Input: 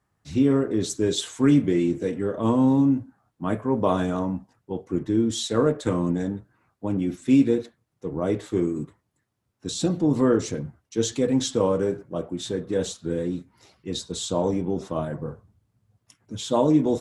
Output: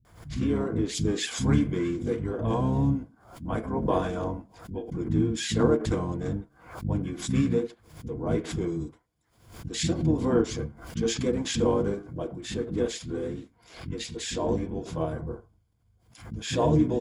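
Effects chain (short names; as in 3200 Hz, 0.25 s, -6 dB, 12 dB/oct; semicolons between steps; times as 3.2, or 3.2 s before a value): ripple EQ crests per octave 1.8, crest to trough 8 dB; harmoniser -12 st -4 dB, -5 st -5 dB; bands offset in time lows, highs 50 ms, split 220 Hz; backwards sustainer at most 99 dB/s; gain -5.5 dB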